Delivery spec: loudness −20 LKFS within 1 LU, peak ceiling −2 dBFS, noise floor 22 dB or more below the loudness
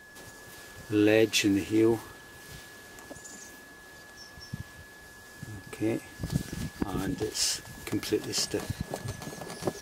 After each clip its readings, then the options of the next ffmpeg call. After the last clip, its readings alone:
interfering tone 1,700 Hz; level of the tone −50 dBFS; integrated loudness −29.5 LKFS; sample peak −8.5 dBFS; target loudness −20.0 LKFS
→ -af "bandreject=frequency=1700:width=30"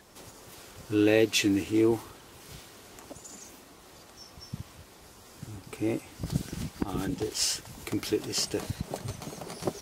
interfering tone none found; integrated loudness −29.5 LKFS; sample peak −9.0 dBFS; target loudness −20.0 LKFS
→ -af "volume=9.5dB,alimiter=limit=-2dB:level=0:latency=1"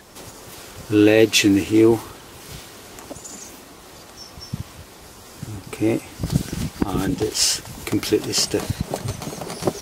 integrated loudness −20.0 LKFS; sample peak −2.0 dBFS; background noise floor −43 dBFS

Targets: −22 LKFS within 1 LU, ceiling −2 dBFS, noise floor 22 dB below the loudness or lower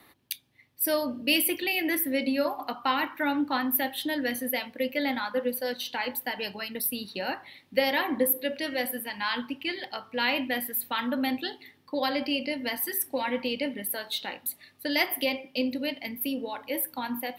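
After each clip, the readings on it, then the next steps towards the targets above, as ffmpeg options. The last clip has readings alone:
integrated loudness −29.0 LKFS; sample peak −10.0 dBFS; target loudness −22.0 LKFS
→ -af "volume=7dB"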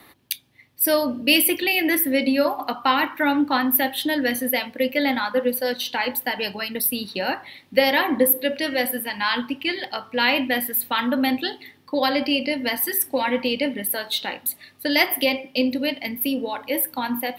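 integrated loudness −22.0 LKFS; sample peak −3.0 dBFS; background noise floor −55 dBFS

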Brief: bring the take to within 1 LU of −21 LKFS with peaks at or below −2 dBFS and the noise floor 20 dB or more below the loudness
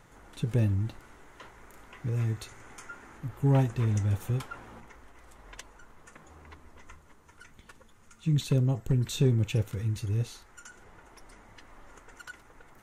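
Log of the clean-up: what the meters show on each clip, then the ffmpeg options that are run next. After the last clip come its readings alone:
integrated loudness −29.0 LKFS; sample peak −13.5 dBFS; target loudness −21.0 LKFS
→ -af "volume=8dB"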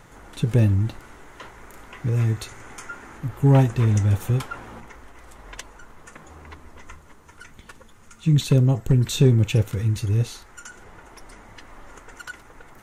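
integrated loudness −21.0 LKFS; sample peak −5.5 dBFS; background noise floor −49 dBFS

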